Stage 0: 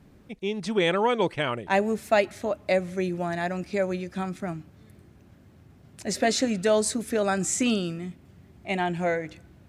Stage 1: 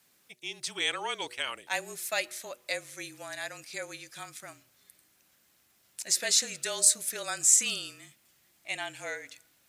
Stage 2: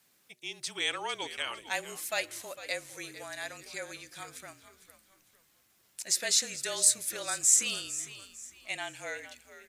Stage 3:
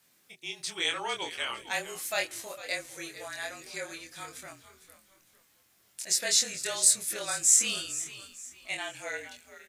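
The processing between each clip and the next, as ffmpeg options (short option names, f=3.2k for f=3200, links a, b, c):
-af "afreqshift=-33,aderivative,bandreject=f=121.8:t=h:w=4,bandreject=f=243.6:t=h:w=4,bandreject=f=365.4:t=h:w=4,bandreject=f=487.2:t=h:w=4,bandreject=f=609:t=h:w=4,volume=7.5dB"
-filter_complex "[0:a]asplit=4[a][b][c][d];[b]adelay=452,afreqshift=-73,volume=-14dB[e];[c]adelay=904,afreqshift=-146,volume=-23.6dB[f];[d]adelay=1356,afreqshift=-219,volume=-33.3dB[g];[a][e][f][g]amix=inputs=4:normalize=0,volume=-1.5dB"
-filter_complex "[0:a]asplit=2[a][b];[b]adelay=24,volume=-3dB[c];[a][c]amix=inputs=2:normalize=0"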